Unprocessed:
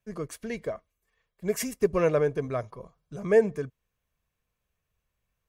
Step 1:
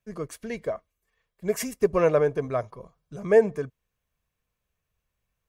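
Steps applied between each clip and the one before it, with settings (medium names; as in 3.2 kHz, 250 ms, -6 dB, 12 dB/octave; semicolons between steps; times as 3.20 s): dynamic bell 810 Hz, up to +5 dB, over -37 dBFS, Q 0.83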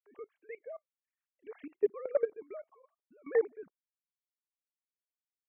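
formants replaced by sine waves; level held to a coarse grid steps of 19 dB; trim -4 dB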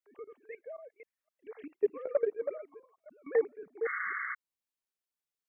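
chunks repeated in reverse 258 ms, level -6.5 dB; painted sound noise, 3.85–4.35 s, 1.1–2.2 kHz -36 dBFS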